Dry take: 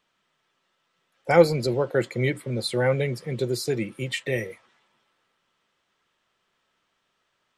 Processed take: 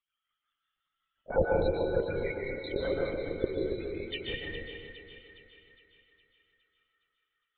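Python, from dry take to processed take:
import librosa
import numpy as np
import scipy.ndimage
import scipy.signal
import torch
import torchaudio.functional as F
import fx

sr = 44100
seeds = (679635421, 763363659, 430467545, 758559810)

p1 = scipy.signal.sosfilt(scipy.signal.butter(2, 350.0, 'highpass', fs=sr, output='sos'), x)
p2 = fx.high_shelf(p1, sr, hz=2500.0, db=7.5)
p3 = fx.spec_topn(p2, sr, count=8)
p4 = fx.wow_flutter(p3, sr, seeds[0], rate_hz=2.1, depth_cents=23.0)
p5 = fx.rotary(p4, sr, hz=5.5)
p6 = fx.lpc_vocoder(p5, sr, seeds[1], excitation='whisper', order=8)
p7 = p6 + fx.echo_split(p6, sr, split_hz=1000.0, low_ms=280, high_ms=412, feedback_pct=52, wet_db=-9, dry=0)
p8 = fx.rev_plate(p7, sr, seeds[2], rt60_s=1.0, hf_ratio=0.95, predelay_ms=115, drr_db=-1.5)
y = F.gain(torch.from_numpy(p8), -7.5).numpy()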